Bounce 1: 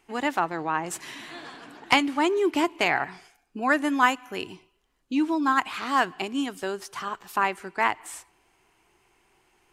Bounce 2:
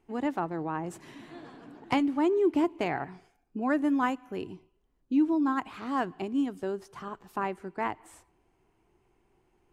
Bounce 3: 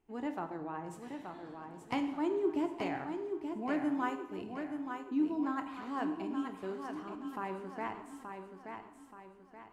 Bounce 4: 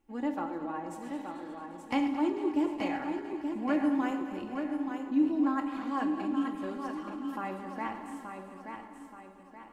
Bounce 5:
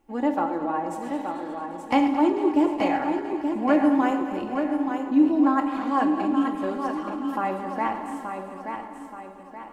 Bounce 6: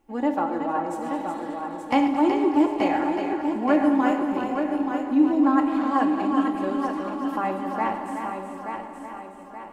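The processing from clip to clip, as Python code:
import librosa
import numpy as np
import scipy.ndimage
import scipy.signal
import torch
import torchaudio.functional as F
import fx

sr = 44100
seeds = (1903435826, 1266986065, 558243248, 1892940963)

y1 = fx.tilt_shelf(x, sr, db=9.0, hz=810.0)
y1 = y1 * librosa.db_to_amplitude(-6.5)
y2 = fx.echo_feedback(y1, sr, ms=877, feedback_pct=42, wet_db=-6.5)
y2 = fx.rev_plate(y2, sr, seeds[0], rt60_s=0.95, hf_ratio=0.8, predelay_ms=0, drr_db=6.5)
y2 = y2 * librosa.db_to_amplitude(-8.5)
y3 = fx.reverse_delay_fb(y2, sr, ms=111, feedback_pct=76, wet_db=-11.5)
y3 = y3 + 0.67 * np.pad(y3, (int(3.6 * sr / 1000.0), 0))[:len(y3)]
y3 = y3 * librosa.db_to_amplitude(1.5)
y4 = fx.peak_eq(y3, sr, hz=680.0, db=6.0, octaves=1.6)
y4 = y4 * librosa.db_to_amplitude(6.0)
y5 = y4 + 10.0 ** (-7.0 / 20.0) * np.pad(y4, (int(372 * sr / 1000.0), 0))[:len(y4)]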